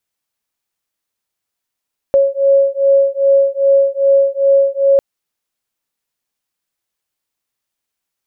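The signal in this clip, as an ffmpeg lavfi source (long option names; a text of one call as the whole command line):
ffmpeg -f lavfi -i "aevalsrc='0.251*(sin(2*PI*550*t)+sin(2*PI*552.5*t))':duration=2.85:sample_rate=44100" out.wav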